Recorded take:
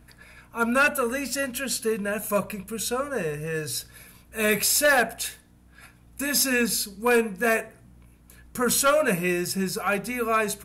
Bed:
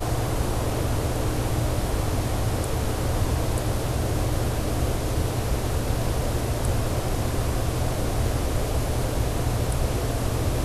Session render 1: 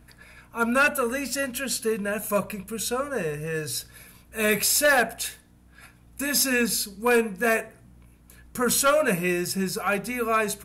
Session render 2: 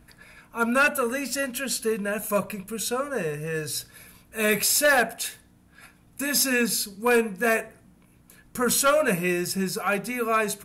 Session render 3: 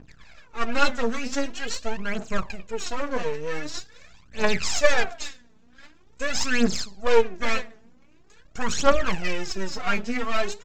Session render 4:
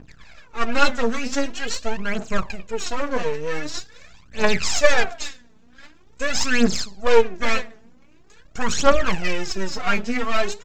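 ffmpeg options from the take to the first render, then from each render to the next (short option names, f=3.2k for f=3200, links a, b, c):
-af anull
-af "bandreject=f=60:t=h:w=4,bandreject=f=120:t=h:w=4"
-af "aresample=16000,aeval=exprs='max(val(0),0)':c=same,aresample=44100,aphaser=in_gain=1:out_gain=1:delay=4.7:decay=0.71:speed=0.45:type=triangular"
-af "volume=3.5dB,alimiter=limit=-1dB:level=0:latency=1"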